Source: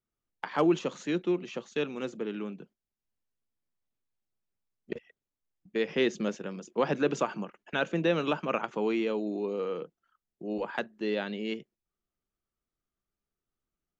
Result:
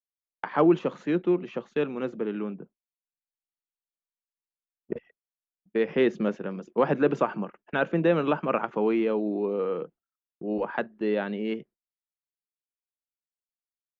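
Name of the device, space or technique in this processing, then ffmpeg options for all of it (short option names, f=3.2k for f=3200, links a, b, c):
hearing-loss simulation: -filter_complex "[0:a]asettb=1/sr,asplit=3[a][b][c];[a]atrim=end=2.544[d];[b]atrim=start=2.54:end=4.96,asetpts=PTS-STARTPTS,afade=t=in:d=0.004:c=qsin,afade=t=out:st=2.416:d=0.004:c=qsin,lowpass=1.3k[e];[c]atrim=start=4.956[f];[d][e]acrossfade=d=0.004:c1=hsin:c2=qsin[g];[g][f]acrossfade=d=0.004:c1=qsin:c2=hsin,lowpass=1.7k,highshelf=f=5.8k:g=11.5,agate=range=-33dB:threshold=-48dB:ratio=3:detection=peak,volume=4.5dB"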